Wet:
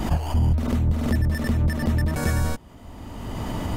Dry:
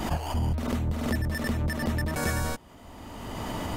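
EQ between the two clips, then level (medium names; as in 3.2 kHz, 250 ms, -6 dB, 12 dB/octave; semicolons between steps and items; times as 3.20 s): bass shelf 260 Hz +8.5 dB; 0.0 dB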